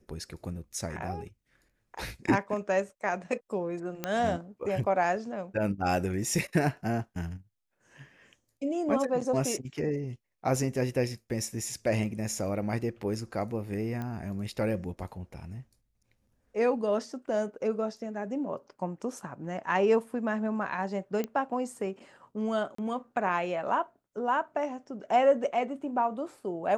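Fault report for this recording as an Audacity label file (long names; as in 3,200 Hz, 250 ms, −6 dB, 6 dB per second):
4.040000	4.040000	click −15 dBFS
14.020000	14.020000	click −24 dBFS
21.240000	21.240000	click −19 dBFS
22.750000	22.780000	drop-out 34 ms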